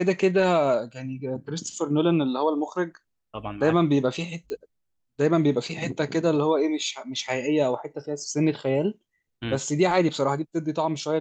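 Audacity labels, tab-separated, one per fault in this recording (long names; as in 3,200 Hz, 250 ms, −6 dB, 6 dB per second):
4.500000	4.500000	click −22 dBFS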